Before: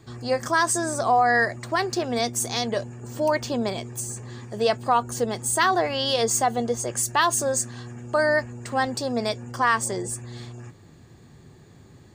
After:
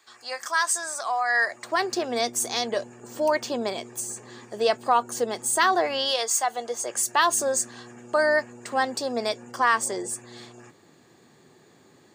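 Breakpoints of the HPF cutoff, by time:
1.28 s 1100 Hz
1.84 s 290 Hz
5.97 s 290 Hz
6.3 s 970 Hz
7.28 s 290 Hz

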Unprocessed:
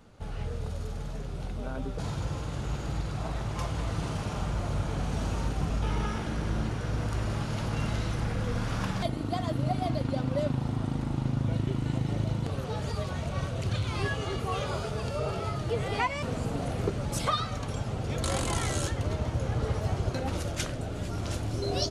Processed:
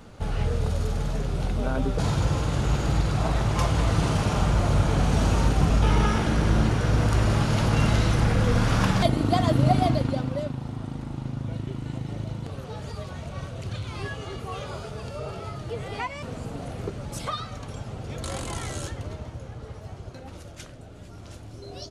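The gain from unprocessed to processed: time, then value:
9.79 s +9 dB
10.53 s -3 dB
18.92 s -3 dB
19.58 s -10 dB

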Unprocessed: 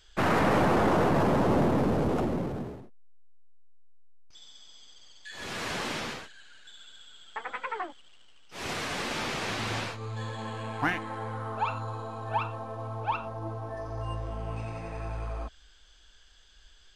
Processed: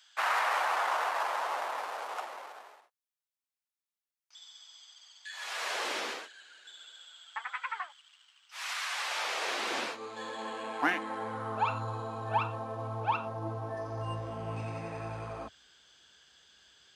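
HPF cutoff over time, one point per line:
HPF 24 dB/oct
5.39 s 820 Hz
6 s 330 Hz
6.76 s 330 Hz
7.47 s 1000 Hz
8.84 s 1000 Hz
9.83 s 260 Hz
10.87 s 260 Hz
11.65 s 98 Hz

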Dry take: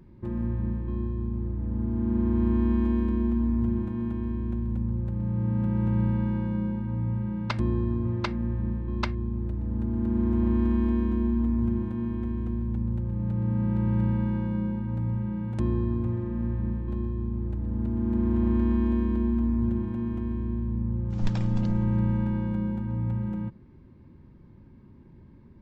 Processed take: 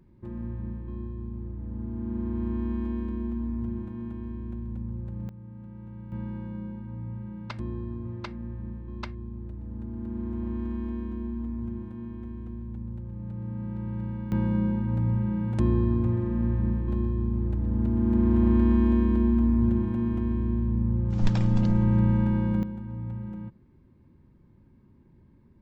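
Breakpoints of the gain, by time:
-6 dB
from 5.29 s -17.5 dB
from 6.12 s -8 dB
from 14.32 s +3 dB
from 22.63 s -6 dB

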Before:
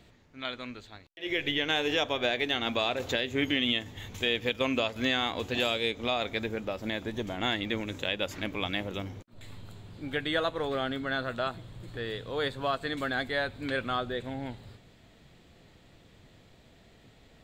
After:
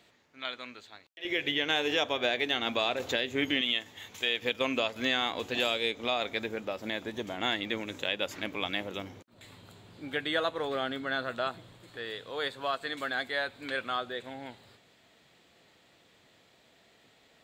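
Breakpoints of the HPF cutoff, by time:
HPF 6 dB/oct
600 Hz
from 1.25 s 210 Hz
from 3.61 s 740 Hz
from 4.42 s 280 Hz
from 11.76 s 600 Hz

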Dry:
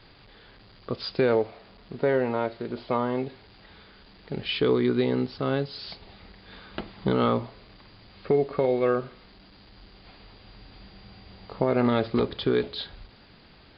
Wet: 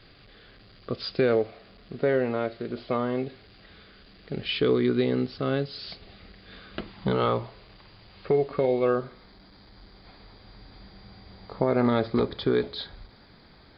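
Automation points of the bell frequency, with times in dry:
bell -13 dB 0.22 oct
6.78 s 910 Hz
7.18 s 250 Hz
8.44 s 250 Hz
8.63 s 1100 Hz
9.05 s 2800 Hz

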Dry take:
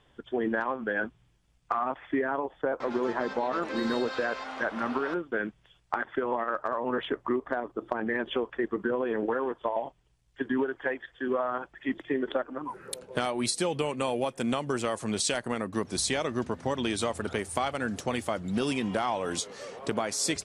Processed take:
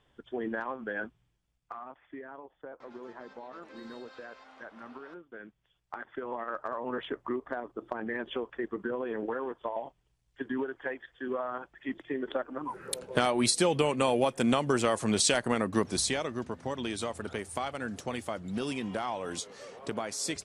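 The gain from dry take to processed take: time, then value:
1.01 s -5.5 dB
1.96 s -16 dB
5.36 s -16 dB
6.58 s -5 dB
12.17 s -5 dB
13 s +3 dB
15.79 s +3 dB
16.35 s -5 dB

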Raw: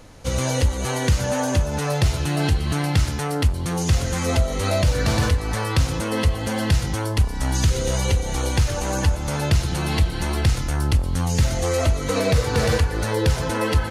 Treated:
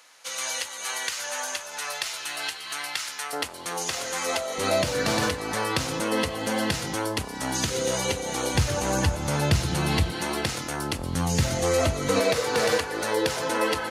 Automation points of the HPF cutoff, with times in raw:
1300 Hz
from 3.33 s 570 Hz
from 4.58 s 230 Hz
from 8.55 s 100 Hz
from 10.12 s 250 Hz
from 10.99 s 120 Hz
from 12.2 s 330 Hz

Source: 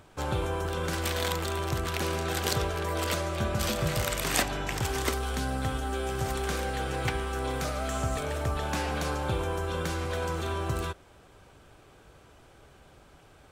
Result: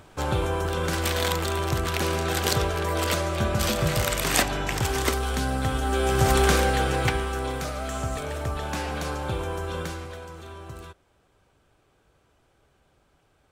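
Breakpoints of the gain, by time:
5.68 s +4.5 dB
6.4 s +12 dB
7.65 s +0.5 dB
9.8 s +0.5 dB
10.26 s -9.5 dB

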